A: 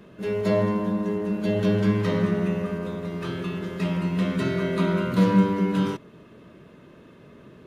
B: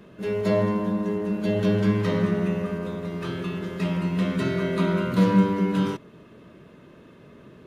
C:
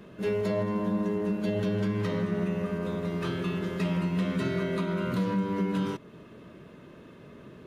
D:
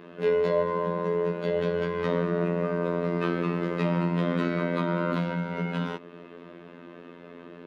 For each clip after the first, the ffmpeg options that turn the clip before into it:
-af anull
-af "alimiter=limit=-20dB:level=0:latency=1:release=311"
-filter_complex "[0:a]afftfilt=real='hypot(re,im)*cos(PI*b)':imag='0':win_size=2048:overlap=0.75,acrossover=split=190 4100:gain=0.112 1 0.126[a][b][c];[a][b][c]amix=inputs=3:normalize=0,volume=8.5dB"

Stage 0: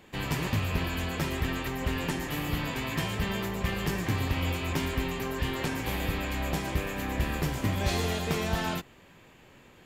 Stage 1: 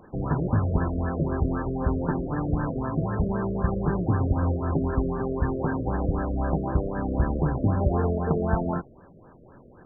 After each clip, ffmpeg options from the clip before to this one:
-af "afftfilt=real='re*lt(b*sr/1024,660*pow(1800/660,0.5+0.5*sin(2*PI*3.9*pts/sr)))':imag='im*lt(b*sr/1024,660*pow(1800/660,0.5+0.5*sin(2*PI*3.9*pts/sr)))':win_size=1024:overlap=0.75,volume=6dB"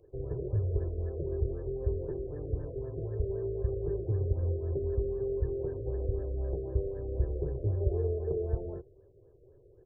-af "firequalizer=gain_entry='entry(110,0);entry(210,-29);entry(390,5);entry(820,-22);entry(1400,-29);entry(2200,-4)':delay=0.05:min_phase=1,volume=-5dB"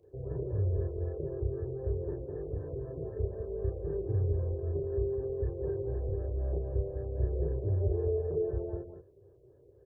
-af "highpass=61,aecho=1:1:32.07|201.2:0.891|0.501,volume=-2.5dB"

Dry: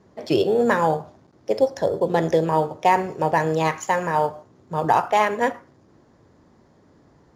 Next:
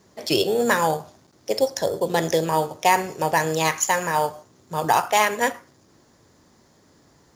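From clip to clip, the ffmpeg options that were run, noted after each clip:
-af "crystalizer=i=6:c=0,volume=-3dB"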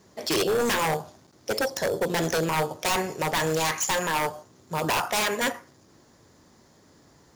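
-af "aeval=exprs='0.119*(abs(mod(val(0)/0.119+3,4)-2)-1)':c=same"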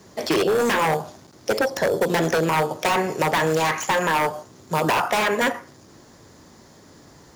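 -filter_complex "[0:a]acrossover=split=120|2800[a][b][c];[a]acompressor=threshold=-55dB:ratio=4[d];[b]acompressor=threshold=-25dB:ratio=4[e];[c]acompressor=threshold=-42dB:ratio=4[f];[d][e][f]amix=inputs=3:normalize=0,volume=8dB"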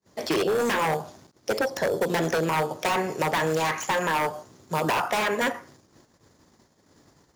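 -af "agate=range=-33dB:threshold=-47dB:ratio=16:detection=peak,volume=-4dB"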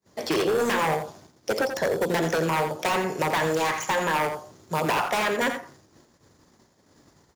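-af "aecho=1:1:85:0.355"

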